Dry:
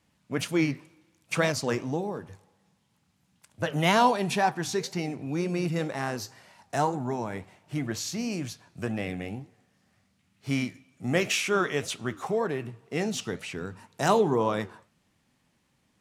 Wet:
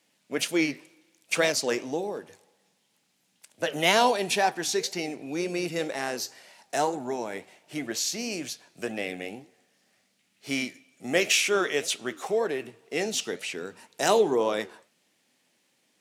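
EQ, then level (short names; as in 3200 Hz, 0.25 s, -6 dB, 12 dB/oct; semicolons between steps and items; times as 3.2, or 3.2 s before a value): HPF 410 Hz 12 dB/oct; bell 1100 Hz -9.5 dB 1.2 oct; +6.0 dB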